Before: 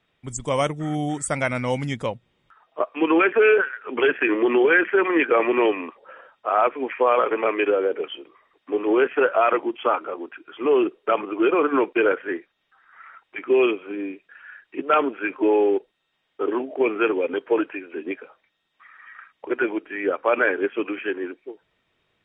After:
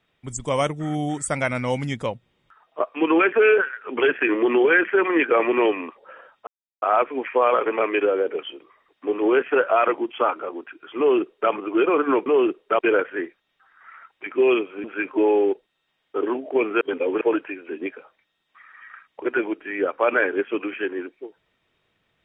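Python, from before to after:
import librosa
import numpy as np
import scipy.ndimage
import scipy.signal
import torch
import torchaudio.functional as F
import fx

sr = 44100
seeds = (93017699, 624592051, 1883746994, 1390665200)

y = fx.edit(x, sr, fx.insert_silence(at_s=6.47, length_s=0.35),
    fx.duplicate(start_s=10.63, length_s=0.53, to_s=11.91),
    fx.cut(start_s=13.96, length_s=1.13),
    fx.reverse_span(start_s=17.06, length_s=0.4), tone=tone)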